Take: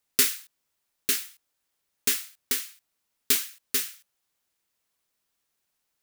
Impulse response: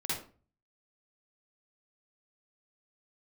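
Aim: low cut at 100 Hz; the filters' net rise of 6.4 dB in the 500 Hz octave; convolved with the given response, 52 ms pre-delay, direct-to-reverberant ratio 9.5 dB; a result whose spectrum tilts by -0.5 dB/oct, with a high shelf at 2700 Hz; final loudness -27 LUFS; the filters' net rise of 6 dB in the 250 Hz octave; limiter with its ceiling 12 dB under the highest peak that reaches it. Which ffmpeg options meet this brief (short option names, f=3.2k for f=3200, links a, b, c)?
-filter_complex "[0:a]highpass=100,equalizer=f=250:t=o:g=5,equalizer=f=500:t=o:g=6.5,highshelf=f=2.7k:g=-6.5,alimiter=limit=-20.5dB:level=0:latency=1,asplit=2[a][b];[1:a]atrim=start_sample=2205,adelay=52[c];[b][c]afir=irnorm=-1:irlink=0,volume=-14dB[d];[a][d]amix=inputs=2:normalize=0,volume=9dB"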